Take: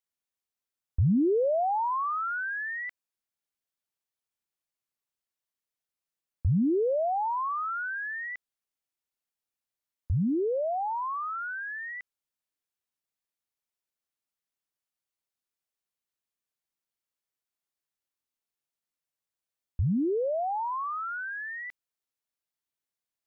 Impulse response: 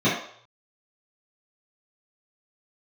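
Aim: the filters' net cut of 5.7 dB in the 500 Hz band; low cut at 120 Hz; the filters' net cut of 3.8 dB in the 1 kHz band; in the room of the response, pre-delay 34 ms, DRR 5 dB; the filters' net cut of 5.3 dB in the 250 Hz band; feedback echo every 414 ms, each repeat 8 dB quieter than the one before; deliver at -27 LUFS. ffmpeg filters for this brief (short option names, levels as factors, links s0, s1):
-filter_complex "[0:a]highpass=120,equalizer=f=250:t=o:g=-5,equalizer=f=500:t=o:g=-5,equalizer=f=1000:t=o:g=-3,aecho=1:1:414|828|1242|1656|2070:0.398|0.159|0.0637|0.0255|0.0102,asplit=2[s0][s1];[1:a]atrim=start_sample=2205,adelay=34[s2];[s1][s2]afir=irnorm=-1:irlink=0,volume=0.075[s3];[s0][s3]amix=inputs=2:normalize=0,volume=1.58"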